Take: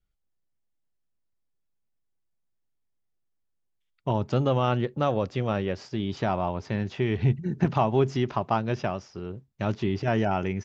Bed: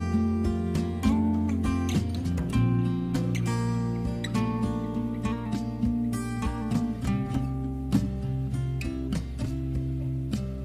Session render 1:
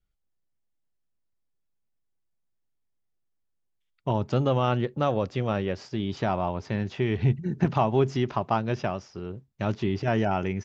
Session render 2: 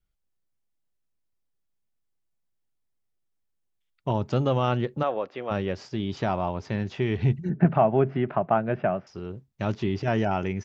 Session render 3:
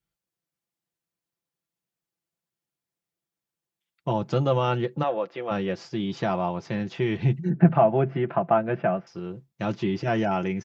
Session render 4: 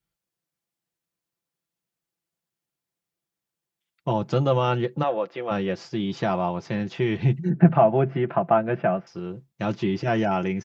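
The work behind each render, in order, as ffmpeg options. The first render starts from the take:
ffmpeg -i in.wav -af anull out.wav
ffmpeg -i in.wav -filter_complex "[0:a]asplit=3[link_01][link_02][link_03];[link_01]afade=type=out:start_time=5.02:duration=0.02[link_04];[link_02]highpass=410,lowpass=2600,afade=type=in:start_time=5.02:duration=0.02,afade=type=out:start_time=5.5:duration=0.02[link_05];[link_03]afade=type=in:start_time=5.5:duration=0.02[link_06];[link_04][link_05][link_06]amix=inputs=3:normalize=0,asettb=1/sr,asplit=3[link_07][link_08][link_09];[link_07]atrim=end=7.494[link_10];[link_08]atrim=start=7.49:end=9.07,asetpts=PTS-STARTPTS,afade=type=in:duration=0.004:curve=qsin,afade=type=out:start_time=1.576:duration=0.004:curve=qsin,highpass=120,equalizer=frequency=170:width_type=q:width=4:gain=7,equalizer=frequency=650:width_type=q:width=4:gain=8,equalizer=frequency=980:width_type=q:width=4:gain=-4,equalizer=frequency=1500:width_type=q:width=4:gain=4,lowpass=frequency=2400:width=0.5412,lowpass=frequency=2400:width=1.3066[link_11];[link_09]atrim=start=9.066[link_12];[link_10][link_11]acrossfade=duration=0.004:curve1=hsin:curve2=qsin[link_13];[link_13][link_12]acrossfade=duration=0.004:curve1=qsin:curve2=hsin" out.wav
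ffmpeg -i in.wav -af "highpass=100,aecho=1:1:5.9:0.55" out.wav
ffmpeg -i in.wav -af "volume=1.5dB" out.wav

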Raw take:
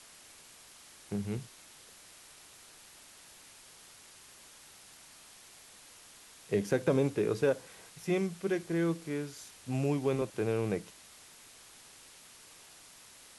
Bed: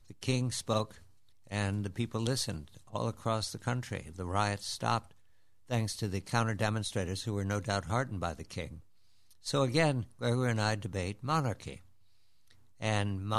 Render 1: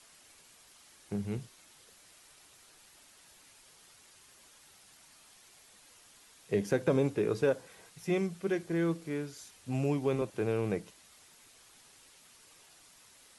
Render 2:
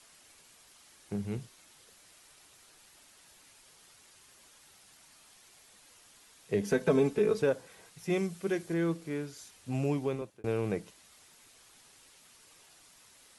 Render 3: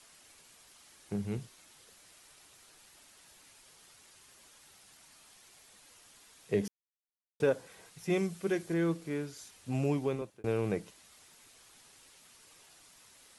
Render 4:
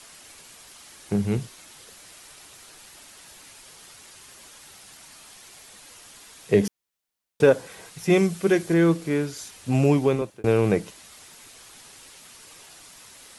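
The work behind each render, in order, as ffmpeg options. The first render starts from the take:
ffmpeg -i in.wav -af "afftdn=noise_reduction=6:noise_floor=-56" out.wav
ffmpeg -i in.wav -filter_complex "[0:a]asettb=1/sr,asplit=3[link_01][link_02][link_03];[link_01]atrim=end=6.634[link_04];[link_02]atrim=start=6.63:end=7.42,asetpts=PTS-STARTPTS,afade=type=in:duration=0.004:curve=qsin,afade=type=out:start_time=0.786:duration=0.004:curve=qsin,aecho=1:1:4.6:0.78,atrim=end_sample=34839[link_05];[link_03]atrim=start=7.416[link_06];[link_04][link_05]acrossfade=duration=0.004:curve1=hsin:curve2=qsin[link_07];[link_07][link_06]acrossfade=duration=0.004:curve1=qsin:curve2=hsin,asettb=1/sr,asplit=3[link_08][link_09][link_10];[link_08]atrim=end=8.104[link_11];[link_09]atrim=start=8.1:end=8.74,asetpts=PTS-STARTPTS,afade=type=in:duration=0.004:curve=qsin,afade=type=out:start_time=0.636:duration=0.004:curve=qsin,highshelf=frequency=5300:gain=6[link_12];[link_10]atrim=start=8.736[link_13];[link_11][link_12]acrossfade=duration=0.004:curve1=hsin:curve2=qsin[link_14];[link_14][link_13]acrossfade=duration=0.004:curve1=qsin:curve2=hsin,asplit=2[link_15][link_16];[link_15]atrim=end=10.44,asetpts=PTS-STARTPTS,afade=type=out:start_time=9.98:duration=0.46[link_17];[link_16]atrim=start=10.44,asetpts=PTS-STARTPTS,afade=type=in:duration=0.004:curve=hsin[link_18];[link_17][link_18]concat=n=2:v=0:a=1" out.wav
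ffmpeg -i in.wav -filter_complex "[0:a]asplit=3[link_01][link_02][link_03];[link_01]atrim=end=6.68,asetpts=PTS-STARTPTS,afade=type=out:start_time=6.676:duration=0.004:curve=hsin[link_04];[link_02]atrim=start=6.68:end=7.4,asetpts=PTS-STARTPTS,volume=0[link_05];[link_03]atrim=start=7.4,asetpts=PTS-STARTPTS,afade=type=in:duration=0.004:curve=hsin[link_06];[link_04][link_05][link_06]concat=n=3:v=0:a=1" out.wav
ffmpeg -i in.wav -af "volume=11.5dB" out.wav

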